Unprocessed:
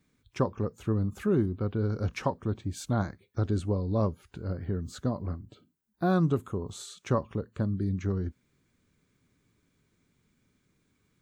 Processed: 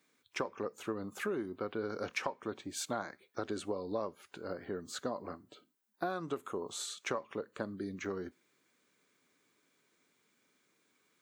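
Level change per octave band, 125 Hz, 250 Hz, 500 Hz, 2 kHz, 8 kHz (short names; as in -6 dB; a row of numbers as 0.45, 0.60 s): -22.0, -11.0, -5.5, +1.0, +2.5 dB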